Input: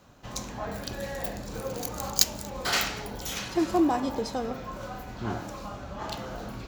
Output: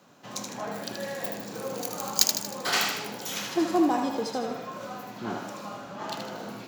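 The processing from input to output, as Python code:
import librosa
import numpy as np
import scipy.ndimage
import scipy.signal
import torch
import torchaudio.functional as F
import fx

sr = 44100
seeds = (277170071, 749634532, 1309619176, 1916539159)

y = scipy.signal.sosfilt(scipy.signal.butter(4, 150.0, 'highpass', fs=sr, output='sos'), x)
y = fx.echo_thinned(y, sr, ms=78, feedback_pct=49, hz=420.0, wet_db=-5.0)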